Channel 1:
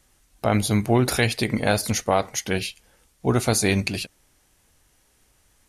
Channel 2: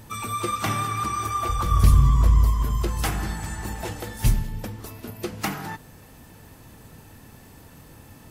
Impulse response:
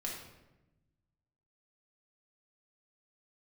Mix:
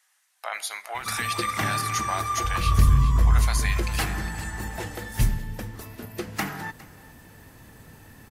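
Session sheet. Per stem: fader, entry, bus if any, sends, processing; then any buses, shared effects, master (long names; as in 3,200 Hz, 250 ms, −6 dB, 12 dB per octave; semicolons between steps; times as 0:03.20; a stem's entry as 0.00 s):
−4.5 dB, 0.00 s, send −14 dB, echo send −12 dB, high-pass filter 830 Hz 24 dB per octave; brickwall limiter −15.5 dBFS, peak gain reduction 9 dB
−2.0 dB, 0.95 s, no send, echo send −20.5 dB, no processing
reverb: on, RT60 1.0 s, pre-delay 4 ms
echo: single-tap delay 408 ms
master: parametric band 1,800 Hz +6 dB 0.42 octaves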